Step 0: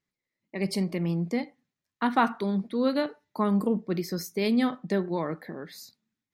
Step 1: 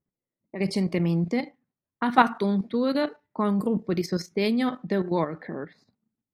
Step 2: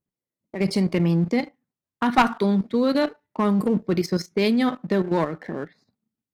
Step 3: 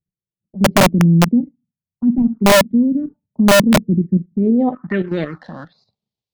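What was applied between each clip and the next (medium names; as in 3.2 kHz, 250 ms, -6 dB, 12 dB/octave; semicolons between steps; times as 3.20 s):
level-controlled noise filter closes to 740 Hz, open at -24 dBFS; level held to a coarse grid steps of 10 dB; trim +7 dB
waveshaping leveller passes 1; one-sided clip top -13 dBFS
low-pass sweep 220 Hz -> 4.2 kHz, 4.38–5.08 s; touch-sensitive phaser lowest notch 250 Hz, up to 3.2 kHz, full sweep at -11 dBFS; integer overflow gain 10 dB; trim +4 dB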